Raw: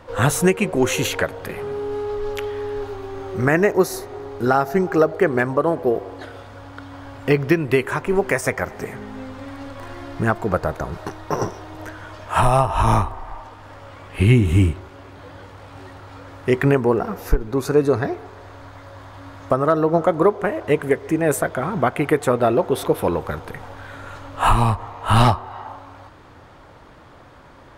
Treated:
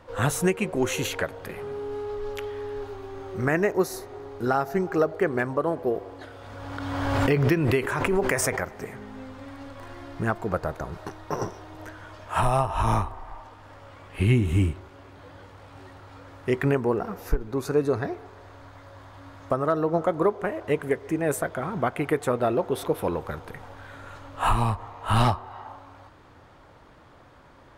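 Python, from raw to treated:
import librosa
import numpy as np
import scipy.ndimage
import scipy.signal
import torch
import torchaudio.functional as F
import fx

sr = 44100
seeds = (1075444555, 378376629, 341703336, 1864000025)

y = fx.pre_swell(x, sr, db_per_s=27.0, at=(6.31, 8.64))
y = F.gain(torch.from_numpy(y), -6.5).numpy()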